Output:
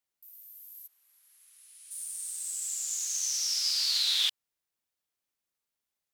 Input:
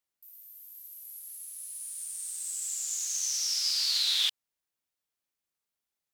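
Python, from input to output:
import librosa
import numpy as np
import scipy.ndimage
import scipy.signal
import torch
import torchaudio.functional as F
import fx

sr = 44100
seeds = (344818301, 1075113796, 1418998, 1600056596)

y = fx.bandpass_q(x, sr, hz=fx.line((0.86, 900.0), (1.9, 2600.0)), q=0.85, at=(0.86, 1.9), fade=0.02)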